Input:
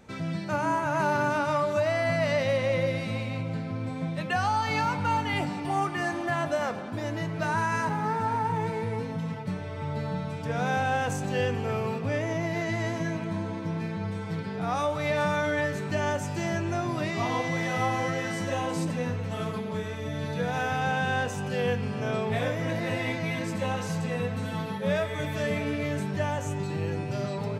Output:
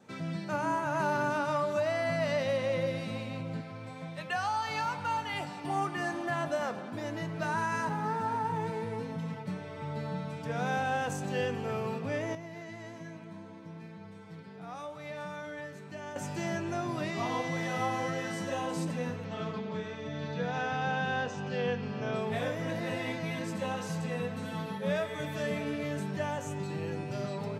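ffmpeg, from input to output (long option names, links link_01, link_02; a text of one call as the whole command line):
ffmpeg -i in.wav -filter_complex "[0:a]asettb=1/sr,asplit=3[link_01][link_02][link_03];[link_01]atrim=end=3.614[link_04];[link_02]atrim=start=3.61:end=5.64,asetpts=PTS-STARTPTS,afade=type=in:duration=0.004:curve=qsin,afade=type=out:start_time=2.026:duration=0.004:curve=qsin,equalizer=frequency=240:width_type=o:width=1.5:gain=-10[link_05];[link_03]atrim=start=5.636[link_06];[link_04][link_05]acrossfade=duration=0.004:curve1=hsin:curve2=qsin[link_07];[link_07][link_06]acrossfade=duration=0.004:curve1=qsin:curve2=hsin,asettb=1/sr,asplit=3[link_08][link_09][link_10];[link_08]atrim=end=19.244[link_11];[link_09]atrim=start=19.24:end=22.16,asetpts=PTS-STARTPTS,afade=type=in:duration=0.004:curve=qsin,afade=type=out:start_time=2.916:duration=0.004:curve=qsin,lowpass=frequency=5900:width=0.5412,lowpass=frequency=5900:width=1.3066[link_12];[link_10]atrim=start=22.156[link_13];[link_11][link_12]acrossfade=duration=0.004:curve1=hsin:curve2=qsin[link_14];[link_14][link_13]acrossfade=duration=0.004:curve1=qsin:curve2=hsin,asplit=3[link_15][link_16][link_17];[link_15]atrim=end=12.352[link_18];[link_16]atrim=start=12.348:end=16.162,asetpts=PTS-STARTPTS,volume=-10dB[link_19];[link_17]atrim=start=16.158[link_20];[link_18][link_19]acrossfade=duration=0.004:curve1=hsin:curve2=hsin[link_21];[link_21][link_20]acrossfade=duration=0.004:curve1=hsin:curve2=hsin,highpass=frequency=120:width=0.5412,highpass=frequency=120:width=1.3066,adynamicequalizer=threshold=0.00224:dfrequency=2200:dqfactor=7.9:tfrequency=2200:tqfactor=7.9:attack=5:release=100:ratio=0.375:range=3:mode=cutabove:tftype=bell,volume=-4dB" out.wav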